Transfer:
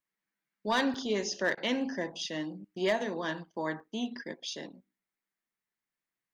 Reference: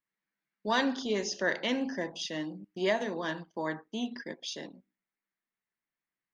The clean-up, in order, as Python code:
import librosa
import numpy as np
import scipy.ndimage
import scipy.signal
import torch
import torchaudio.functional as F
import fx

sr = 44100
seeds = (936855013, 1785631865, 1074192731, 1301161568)

y = fx.fix_declip(x, sr, threshold_db=-20.0)
y = fx.fix_interpolate(y, sr, at_s=(0.94, 3.8), length_ms=3.3)
y = fx.fix_interpolate(y, sr, at_s=(1.55,), length_ms=22.0)